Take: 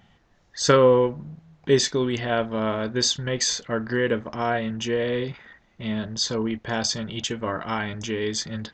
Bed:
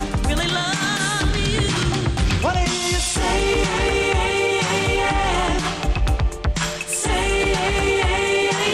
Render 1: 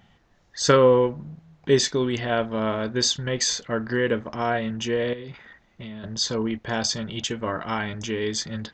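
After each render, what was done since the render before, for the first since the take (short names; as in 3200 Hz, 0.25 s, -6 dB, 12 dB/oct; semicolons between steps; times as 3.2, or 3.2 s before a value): 5.13–6.04 compressor 10:1, threshold -33 dBFS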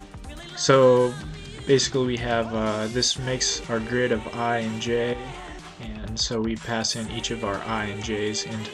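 add bed -18.5 dB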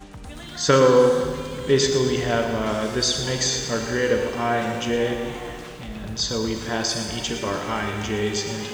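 Schroeder reverb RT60 2.3 s, combs from 30 ms, DRR 5 dB; lo-fi delay 0.116 s, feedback 35%, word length 7-bit, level -10 dB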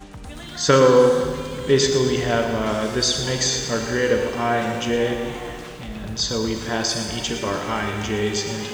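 gain +1.5 dB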